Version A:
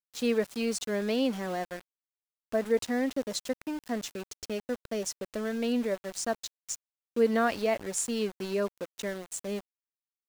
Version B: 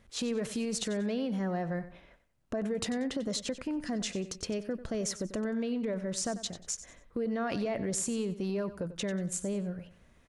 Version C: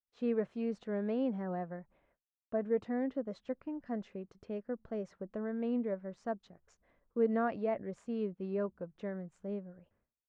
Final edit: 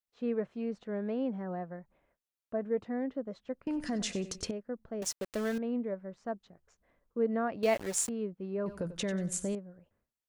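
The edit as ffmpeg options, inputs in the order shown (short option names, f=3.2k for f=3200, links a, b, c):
-filter_complex "[1:a]asplit=2[a][b];[0:a]asplit=2[c][d];[2:a]asplit=5[e][f][g][h][i];[e]atrim=end=3.672[j];[a]atrim=start=3.668:end=4.512[k];[f]atrim=start=4.508:end=5.022[l];[c]atrim=start=5.018:end=5.582[m];[g]atrim=start=5.578:end=7.632[n];[d]atrim=start=7.628:end=8.092[o];[h]atrim=start=8.088:end=8.662[p];[b]atrim=start=8.658:end=9.552[q];[i]atrim=start=9.548[r];[j][k]acrossfade=d=0.004:c1=hsin:c2=hsin[s];[s][l]acrossfade=d=0.004:c1=hsin:c2=hsin[t];[t][m]acrossfade=d=0.004:c1=hsin:c2=hsin[u];[u][n]acrossfade=d=0.004:c1=hsin:c2=hsin[v];[v][o]acrossfade=d=0.004:c1=hsin:c2=hsin[w];[w][p]acrossfade=d=0.004:c1=hsin:c2=hsin[x];[x][q]acrossfade=d=0.004:c1=hsin:c2=hsin[y];[y][r]acrossfade=d=0.004:c1=hsin:c2=hsin"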